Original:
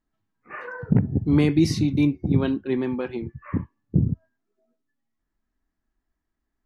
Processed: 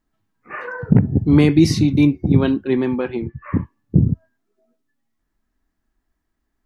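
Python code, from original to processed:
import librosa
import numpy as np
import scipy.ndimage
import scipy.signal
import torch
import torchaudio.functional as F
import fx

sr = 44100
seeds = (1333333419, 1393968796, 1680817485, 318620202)

y = fx.lowpass(x, sr, hz=3900.0, slope=12, at=(2.96, 3.58))
y = y * librosa.db_to_amplitude(6.0)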